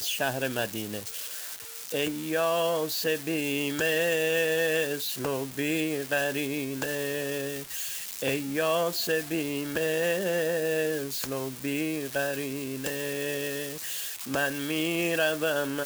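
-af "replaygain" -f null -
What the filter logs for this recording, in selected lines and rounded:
track_gain = +9.6 dB
track_peak = 0.143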